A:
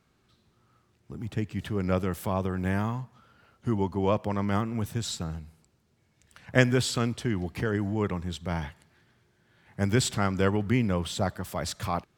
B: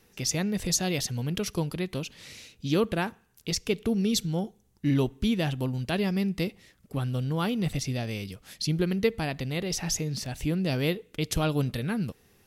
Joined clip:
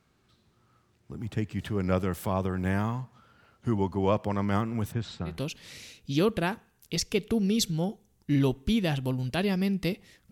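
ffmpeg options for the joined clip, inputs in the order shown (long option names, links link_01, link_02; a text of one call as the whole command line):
ffmpeg -i cue0.wav -i cue1.wav -filter_complex "[0:a]asplit=3[link_01][link_02][link_03];[link_01]afade=type=out:start_time=4.91:duration=0.02[link_04];[link_02]lowpass=2700,afade=type=in:start_time=4.91:duration=0.02,afade=type=out:start_time=5.41:duration=0.02[link_05];[link_03]afade=type=in:start_time=5.41:duration=0.02[link_06];[link_04][link_05][link_06]amix=inputs=3:normalize=0,apad=whole_dur=10.31,atrim=end=10.31,atrim=end=5.41,asetpts=PTS-STARTPTS[link_07];[1:a]atrim=start=1.78:end=6.86,asetpts=PTS-STARTPTS[link_08];[link_07][link_08]acrossfade=duration=0.18:curve1=tri:curve2=tri" out.wav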